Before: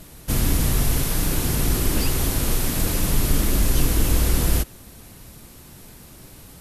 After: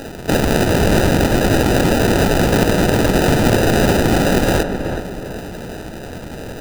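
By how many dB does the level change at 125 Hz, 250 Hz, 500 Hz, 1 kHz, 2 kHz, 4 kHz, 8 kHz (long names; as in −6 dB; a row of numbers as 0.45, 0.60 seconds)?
+6.0, +11.5, +16.5, +14.0, +12.5, +6.0, −1.0 decibels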